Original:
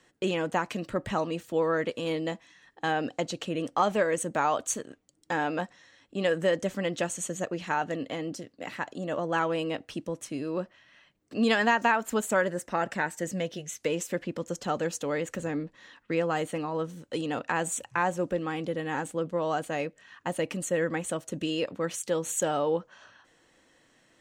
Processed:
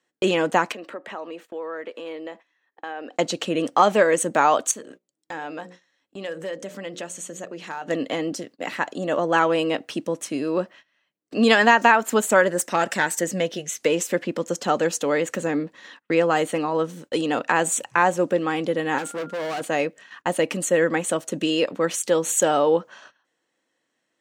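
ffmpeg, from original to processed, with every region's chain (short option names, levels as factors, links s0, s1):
-filter_complex "[0:a]asettb=1/sr,asplit=3[s0][s1][s2];[s0]atrim=end=0.724[s3];[s1]atrim=start=0.72:end=3.16,asetpts=PTS-STARTPTS,afade=t=in:d=0.004:c=qsin,afade=t=out:st=2.436:d=0.004:c=qsin,acrossover=split=270 3000:gain=0.0631 1 0.251[s4][s5][s6];[s4][s5][s6]amix=inputs=3:normalize=0,acompressor=threshold=0.00631:ratio=2.5:attack=3.2:release=140:knee=1:detection=peak[s7];[s2]atrim=start=3.156[s8];[s3][s7]acrossfade=d=0.004:c1=hsin:c2=qsin[s9];[s9][s8]acrossfade=d=0.004:c1=qsin:c2=hsin,asettb=1/sr,asplit=3[s10][s11][s12];[s10]atrim=end=4.714[s13];[s11]atrim=start=4.71:end=7.88,asetpts=PTS-STARTPTS,afade=t=in:d=0.004:c=qsin,afade=t=out:st=3.166:d=0.004:c=qsin,asoftclip=type=hard:threshold=0.133,bandreject=f=60:t=h:w=6,bandreject=f=120:t=h:w=6,bandreject=f=180:t=h:w=6,bandreject=f=240:t=h:w=6,bandreject=f=300:t=h:w=6,bandreject=f=360:t=h:w=6,bandreject=f=420:t=h:w=6,bandreject=f=480:t=h:w=6,bandreject=f=540:t=h:w=6,bandreject=f=600:t=h:w=6,acompressor=threshold=0.00447:ratio=2:attack=3.2:release=140:knee=1:detection=peak[s14];[s12]atrim=start=7.876[s15];[s13][s14]acrossfade=d=0.004:c1=hsin:c2=qsin[s16];[s16][s15]acrossfade=d=0.004:c1=qsin:c2=hsin,asettb=1/sr,asplit=3[s17][s18][s19];[s17]atrim=end=12.584[s20];[s18]atrim=start=12.58:end=13.21,asetpts=PTS-STARTPTS,afade=t=in:d=0.004:c=qsin,afade=t=out:st=0.626:d=0.004:c=qsin,highshelf=f=3500:g=10.5,aeval=exprs='(tanh(7.94*val(0)+0.35)-tanh(0.35))/7.94':c=same[s21];[s19]atrim=start=13.206[s22];[s20][s21]acrossfade=d=0.004:c1=hsin:c2=qsin[s23];[s23][s22]acrossfade=d=0.004:c1=qsin:c2=hsin,asettb=1/sr,asplit=3[s24][s25][s26];[s24]atrim=end=18.984[s27];[s25]atrim=start=18.98:end=19.61,asetpts=PTS-STARTPTS,afade=t=in:d=0.004:c=qsin,afade=t=out:st=0.626:d=0.004:c=qsin,aeval=exprs='val(0)+0.00316*sin(2*PI*1400*n/s)':c=same,highpass=f=140:p=1,asoftclip=type=hard:threshold=0.0188[s28];[s26]atrim=start=19.606[s29];[s27][s28]acrossfade=d=0.004:c1=hsin:c2=qsin[s30];[s30][s29]acrossfade=d=0.004:c1=qsin:c2=hsin,highpass=210,agate=range=0.1:threshold=0.00251:ratio=16:detection=peak,volume=2.66"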